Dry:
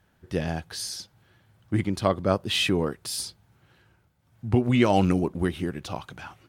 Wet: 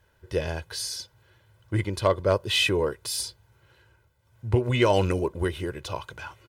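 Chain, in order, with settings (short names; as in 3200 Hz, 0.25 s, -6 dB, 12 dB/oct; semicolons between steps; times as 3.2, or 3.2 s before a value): bell 170 Hz -8 dB 0.5 oct; comb 2 ms, depth 63%; overloaded stage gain 10.5 dB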